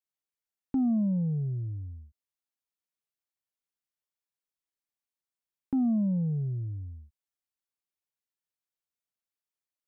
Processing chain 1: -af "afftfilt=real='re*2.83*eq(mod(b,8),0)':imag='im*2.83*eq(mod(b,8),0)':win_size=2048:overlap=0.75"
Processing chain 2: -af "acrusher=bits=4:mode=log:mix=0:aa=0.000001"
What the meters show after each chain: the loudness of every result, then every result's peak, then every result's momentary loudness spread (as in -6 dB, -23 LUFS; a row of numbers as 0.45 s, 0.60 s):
-27.5 LUFS, -30.0 LUFS; -17.5 dBFS, -24.0 dBFS; 18 LU, 14 LU